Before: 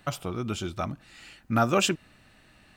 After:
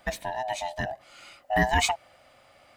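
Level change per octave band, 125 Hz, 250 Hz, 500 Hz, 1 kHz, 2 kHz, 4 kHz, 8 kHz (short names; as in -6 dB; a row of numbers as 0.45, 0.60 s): -3.5, -6.5, -1.5, +3.5, +6.0, 0.0, 0.0 dB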